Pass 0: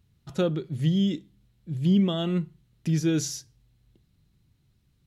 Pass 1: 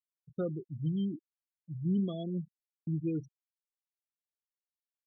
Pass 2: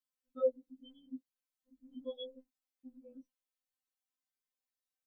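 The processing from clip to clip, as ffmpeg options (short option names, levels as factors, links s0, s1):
-af "equalizer=f=5500:t=o:w=1.2:g=-7.5,afftfilt=real='re*gte(hypot(re,im),0.0708)':imag='im*gte(hypot(re,im),0.0708)':win_size=1024:overlap=0.75,agate=range=0.0224:threshold=0.01:ratio=3:detection=peak,volume=0.355"
-af "afftfilt=real='re*3.46*eq(mod(b,12),0)':imag='im*3.46*eq(mod(b,12),0)':win_size=2048:overlap=0.75,volume=1.26"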